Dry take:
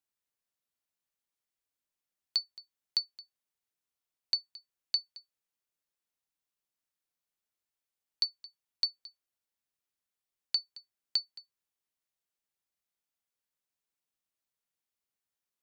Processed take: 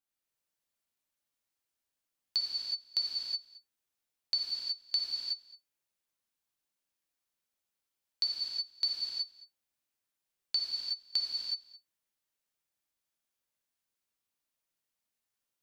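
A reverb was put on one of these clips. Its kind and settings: gated-style reverb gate 400 ms flat, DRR -4 dB; trim -3 dB

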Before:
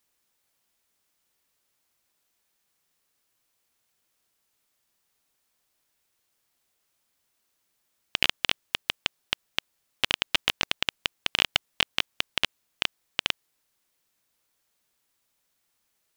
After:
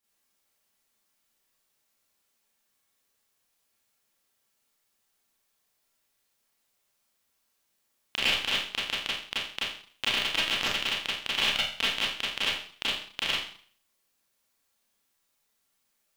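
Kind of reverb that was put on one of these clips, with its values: Schroeder reverb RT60 0.5 s, combs from 28 ms, DRR -9 dB; trim -9.5 dB

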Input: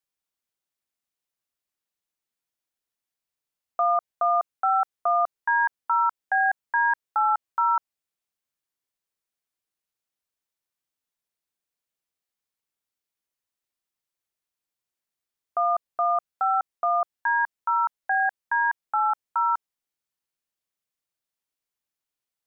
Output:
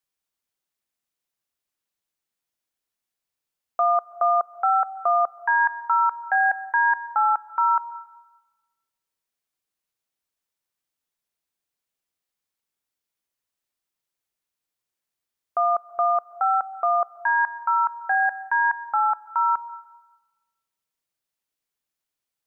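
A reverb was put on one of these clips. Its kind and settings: plate-style reverb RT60 1.2 s, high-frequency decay 1×, pre-delay 115 ms, DRR 18 dB; trim +2 dB

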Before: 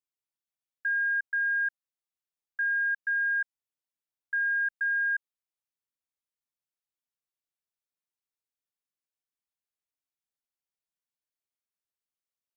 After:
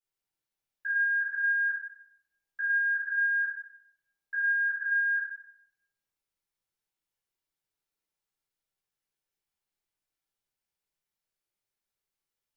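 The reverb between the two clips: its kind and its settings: simulated room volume 190 m³, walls mixed, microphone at 4.1 m; trim -7.5 dB

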